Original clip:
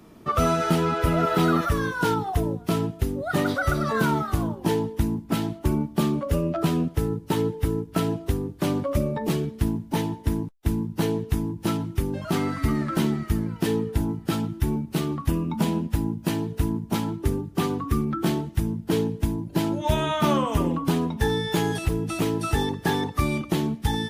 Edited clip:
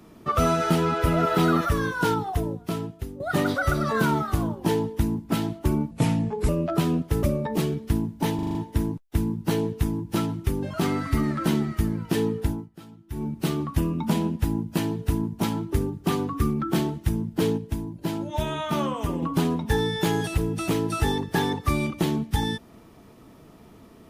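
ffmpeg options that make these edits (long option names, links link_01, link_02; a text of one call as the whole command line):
ffmpeg -i in.wav -filter_complex "[0:a]asplit=14[link_01][link_02][link_03][link_04][link_05][link_06][link_07][link_08][link_09][link_10][link_11][link_12][link_13][link_14];[link_01]atrim=end=3.2,asetpts=PTS-STARTPTS,afade=type=out:start_time=2.06:duration=1.14:silence=0.266073[link_15];[link_02]atrim=start=3.2:end=5.914,asetpts=PTS-STARTPTS,afade=type=in:duration=0.004:curve=hsin:silence=0.266073[link_16];[link_03]atrim=start=5.91:end=6.35,asetpts=PTS-STARTPTS,asetrate=33516,aresample=44100[link_17];[link_04]atrim=start=6.346:end=7.092[link_18];[link_05]atrim=start=8.938:end=10.102[link_19];[link_06]atrim=start=10.058:end=10.102[link_20];[link_07]atrim=start=10.058:end=10.102[link_21];[link_08]atrim=start=10.058:end=10.102[link_22];[link_09]atrim=start=10.058:end=10.102[link_23];[link_10]atrim=start=10.058:end=14.21,asetpts=PTS-STARTPTS,afade=type=out:start_time=3.882:duration=0.27:silence=0.105925[link_24];[link_11]atrim=start=14.21:end=14.58,asetpts=PTS-STARTPTS,volume=-19.5dB[link_25];[link_12]atrim=start=14.58:end=19.092,asetpts=PTS-STARTPTS,afade=type=in:duration=0.27:silence=0.105925[link_26];[link_13]atrim=start=19.088:end=20.732,asetpts=PTS-STARTPTS,volume=-4.5dB[link_27];[link_14]atrim=start=20.728[link_28];[link_15][link_16]concat=n=2:v=0:a=1[link_29];[link_29][link_17]acrossfade=duration=0.004:curve1=hsin:curve2=hsin[link_30];[link_30][link_18]acrossfade=duration=0.004:curve1=hsin:curve2=hsin[link_31];[link_31][link_19]acrossfade=duration=0.004:curve1=hsin:curve2=hsin[link_32];[link_32][link_20]acrossfade=duration=0.004:curve1=hsin:curve2=hsin[link_33];[link_33][link_21]acrossfade=duration=0.004:curve1=hsin:curve2=hsin[link_34];[link_34][link_22]acrossfade=duration=0.004:curve1=hsin:curve2=hsin[link_35];[link_35][link_23]acrossfade=duration=0.004:curve1=hsin:curve2=hsin[link_36];[link_24][link_25][link_26]concat=n=3:v=0:a=1[link_37];[link_36][link_37]acrossfade=duration=0.004:curve1=hsin:curve2=hsin[link_38];[link_38][link_27]acrossfade=duration=0.004:curve1=hsin:curve2=hsin[link_39];[link_39][link_28]acrossfade=duration=0.004:curve1=hsin:curve2=hsin" out.wav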